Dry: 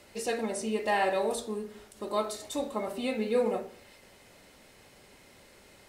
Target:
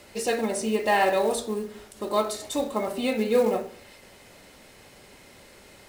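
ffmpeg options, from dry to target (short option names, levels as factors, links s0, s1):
-af "acrusher=bits=6:mode=log:mix=0:aa=0.000001,volume=1.88"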